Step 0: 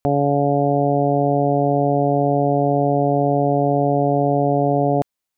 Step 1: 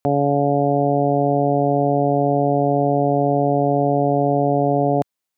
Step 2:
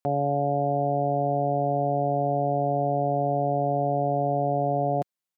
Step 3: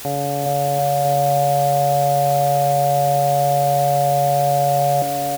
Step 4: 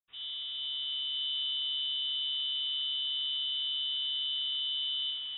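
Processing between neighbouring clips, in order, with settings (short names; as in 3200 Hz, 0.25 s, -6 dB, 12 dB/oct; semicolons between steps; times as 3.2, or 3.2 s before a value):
HPF 98 Hz
comb 5.6 ms, depth 38%; gain -8 dB
requantised 6-bit, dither triangular; bouncing-ball echo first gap 0.41 s, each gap 0.8×, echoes 5; gain +2.5 dB
reverb RT60 0.45 s, pre-delay 76 ms; inverted band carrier 3700 Hz; gain -8.5 dB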